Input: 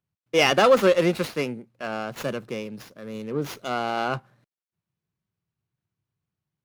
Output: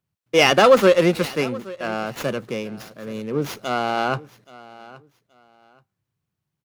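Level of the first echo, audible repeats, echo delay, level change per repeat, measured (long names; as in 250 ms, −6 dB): −20.0 dB, 2, 825 ms, −12.5 dB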